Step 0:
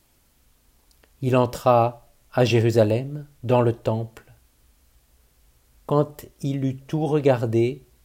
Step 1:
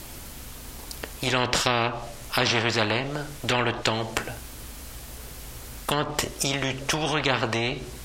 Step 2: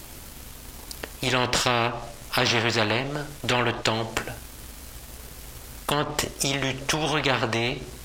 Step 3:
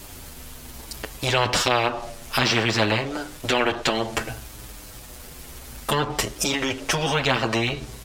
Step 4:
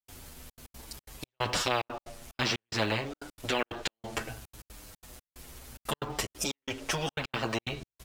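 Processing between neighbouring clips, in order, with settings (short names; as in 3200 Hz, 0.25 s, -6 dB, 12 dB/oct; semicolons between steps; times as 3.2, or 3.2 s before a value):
treble ducked by the level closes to 2500 Hz, closed at -16 dBFS; spectral compressor 4:1; gain +3 dB
sample leveller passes 1; gain -3 dB
endless flanger 7.8 ms -0.6 Hz; gain +4.5 dB
step gate ".xxxxx.x.xxx.xx." 182 bpm -60 dB; short-mantissa float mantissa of 4-bit; gain -8 dB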